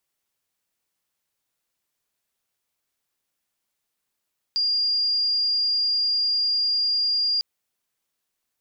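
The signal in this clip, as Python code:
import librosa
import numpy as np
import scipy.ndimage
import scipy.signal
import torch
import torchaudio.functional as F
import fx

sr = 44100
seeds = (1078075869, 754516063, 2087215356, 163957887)

y = 10.0 ** (-19.5 / 20.0) * np.sin(2.0 * np.pi * (4810.0 * (np.arange(round(2.85 * sr)) / sr)))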